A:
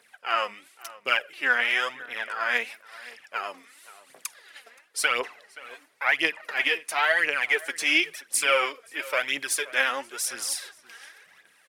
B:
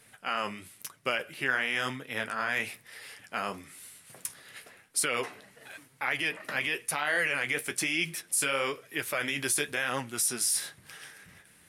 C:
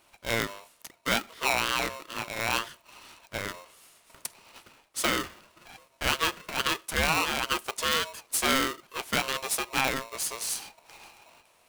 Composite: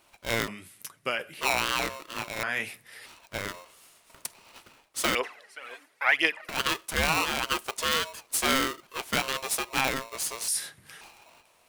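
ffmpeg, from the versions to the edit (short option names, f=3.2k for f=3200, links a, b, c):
-filter_complex "[1:a]asplit=3[a][b][c];[2:a]asplit=5[d][e][f][g][h];[d]atrim=end=0.482[i];[a]atrim=start=0.478:end=1.412[j];[e]atrim=start=1.408:end=2.432[k];[b]atrim=start=2.428:end=3.062[l];[f]atrim=start=3.058:end=5.152[m];[0:a]atrim=start=5.148:end=6.492[n];[g]atrim=start=6.488:end=10.482[o];[c]atrim=start=10.478:end=11.012[p];[h]atrim=start=11.008[q];[i][j]acrossfade=d=0.004:c1=hsin:c2=hsin[r];[r][k]acrossfade=d=0.004:c1=hsin:c2=hsin[s];[s][l]acrossfade=d=0.004:c1=hsin:c2=hsin[t];[t][m]acrossfade=d=0.004:c1=hsin:c2=hsin[u];[u][n]acrossfade=d=0.004:c1=hsin:c2=hsin[v];[v][o]acrossfade=d=0.004:c1=hsin:c2=hsin[w];[w][p]acrossfade=d=0.004:c1=hsin:c2=hsin[x];[x][q]acrossfade=d=0.004:c1=hsin:c2=hsin"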